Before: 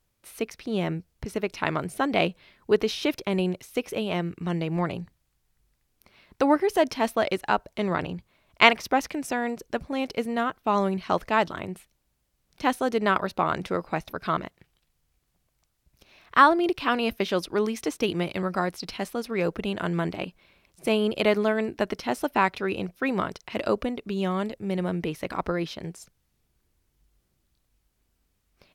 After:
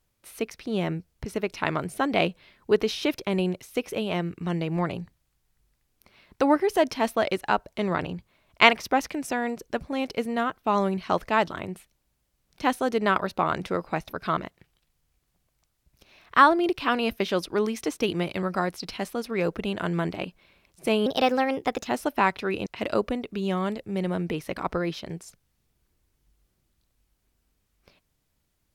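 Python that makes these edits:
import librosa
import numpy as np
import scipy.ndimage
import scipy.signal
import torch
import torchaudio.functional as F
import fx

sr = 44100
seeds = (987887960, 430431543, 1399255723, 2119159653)

y = fx.edit(x, sr, fx.speed_span(start_s=21.06, length_s=0.99, speed=1.22),
    fx.cut(start_s=22.84, length_s=0.56), tone=tone)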